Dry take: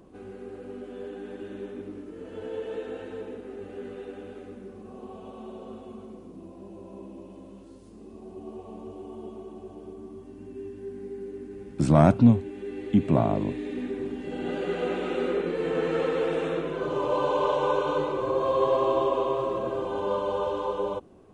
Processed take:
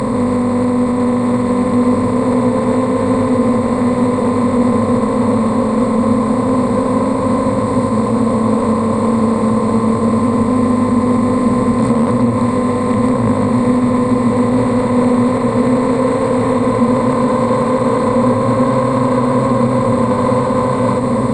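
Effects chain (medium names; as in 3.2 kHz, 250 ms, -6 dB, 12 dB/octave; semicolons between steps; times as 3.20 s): spectral levelling over time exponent 0.2; rippled EQ curve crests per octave 0.97, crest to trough 18 dB; peak limiter -5.5 dBFS, peak gain reduction 9 dB; Chebyshev shaper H 2 -13 dB, 6 -35 dB, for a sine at -0.5 dBFS; on a send: echo that smears into a reverb 1462 ms, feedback 57%, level -6 dB; on the sum: trim -1.5 dB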